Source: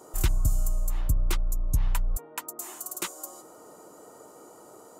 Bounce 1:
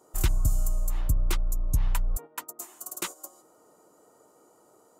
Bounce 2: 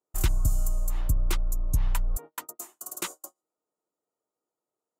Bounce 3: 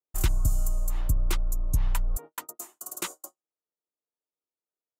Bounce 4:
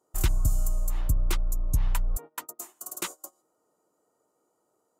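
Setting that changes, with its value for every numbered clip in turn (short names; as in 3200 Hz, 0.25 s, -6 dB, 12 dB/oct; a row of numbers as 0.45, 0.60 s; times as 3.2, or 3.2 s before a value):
gate, range: -10, -40, -53, -24 dB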